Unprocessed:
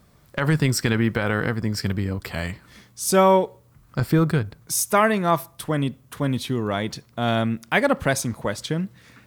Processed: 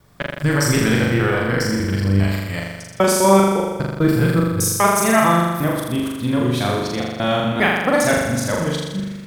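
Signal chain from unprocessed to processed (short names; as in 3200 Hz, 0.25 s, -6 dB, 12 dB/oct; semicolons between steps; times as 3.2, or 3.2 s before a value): local time reversal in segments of 0.2 s; wow and flutter 39 cents; flutter echo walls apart 7 m, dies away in 1.2 s; gain +1 dB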